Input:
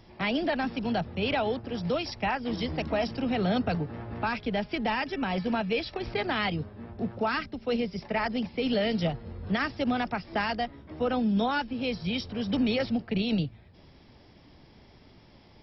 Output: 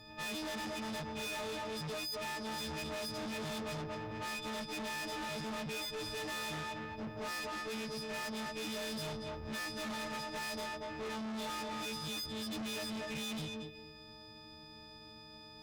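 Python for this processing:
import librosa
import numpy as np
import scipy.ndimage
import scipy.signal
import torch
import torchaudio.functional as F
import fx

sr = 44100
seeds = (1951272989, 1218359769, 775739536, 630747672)

y = fx.freq_snap(x, sr, grid_st=6)
y = fx.echo_banded(y, sr, ms=232, feedback_pct=40, hz=940.0, wet_db=-5.5)
y = fx.tube_stage(y, sr, drive_db=37.0, bias=0.4)
y = F.gain(torch.from_numpy(y), -2.0).numpy()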